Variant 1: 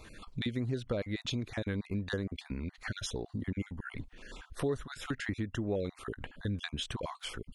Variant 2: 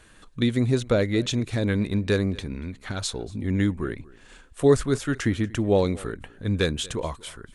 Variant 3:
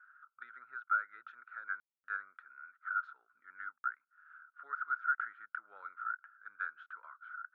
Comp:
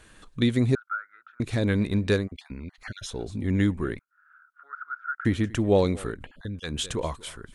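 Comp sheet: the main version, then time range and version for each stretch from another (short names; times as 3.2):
2
0.75–1.4 from 3
2.21–3.13 from 1, crossfade 0.16 s
3.99–5.25 from 3
6.18–6.7 from 1, crossfade 0.16 s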